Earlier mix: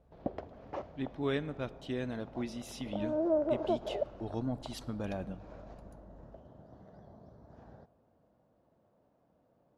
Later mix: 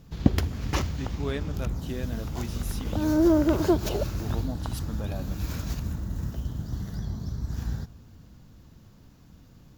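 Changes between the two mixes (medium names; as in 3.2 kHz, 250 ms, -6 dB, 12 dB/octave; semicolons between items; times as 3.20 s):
background: remove band-pass filter 620 Hz, Q 3.3; master: remove distance through air 65 m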